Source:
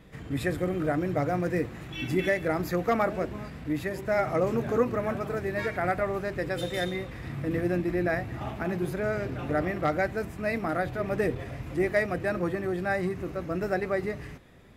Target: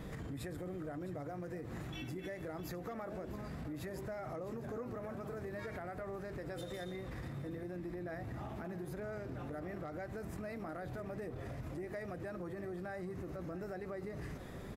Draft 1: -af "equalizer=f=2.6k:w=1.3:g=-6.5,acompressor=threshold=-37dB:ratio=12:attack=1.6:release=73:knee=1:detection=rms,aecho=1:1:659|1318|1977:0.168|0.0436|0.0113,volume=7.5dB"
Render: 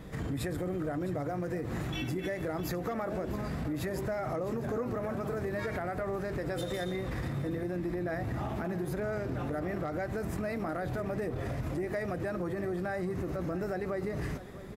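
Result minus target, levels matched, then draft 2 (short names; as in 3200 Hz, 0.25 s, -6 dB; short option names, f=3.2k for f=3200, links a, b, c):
compressor: peak gain reduction -9 dB
-af "equalizer=f=2.6k:w=1.3:g=-6.5,acompressor=threshold=-47dB:ratio=12:attack=1.6:release=73:knee=1:detection=rms,aecho=1:1:659|1318|1977:0.168|0.0436|0.0113,volume=7.5dB"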